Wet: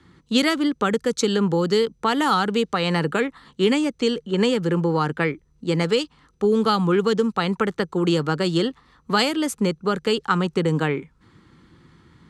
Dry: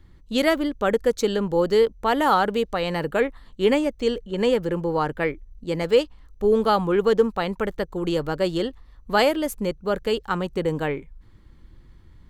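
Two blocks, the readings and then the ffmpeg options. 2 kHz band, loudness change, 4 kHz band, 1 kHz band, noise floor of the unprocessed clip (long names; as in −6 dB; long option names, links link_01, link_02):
+2.0 dB, +1.0 dB, +5.0 dB, 0.0 dB, −51 dBFS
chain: -filter_complex "[0:a]acrossover=split=240|3000[link_01][link_02][link_03];[link_02]acompressor=threshold=-26dB:ratio=6[link_04];[link_01][link_04][link_03]amix=inputs=3:normalize=0,highpass=160,equalizer=frequency=160:width_type=q:width=4:gain=4,equalizer=frequency=600:width_type=q:width=4:gain=-8,equalizer=frequency=1300:width_type=q:width=4:gain=5,lowpass=frequency=9700:width=0.5412,lowpass=frequency=9700:width=1.3066,volume=7dB"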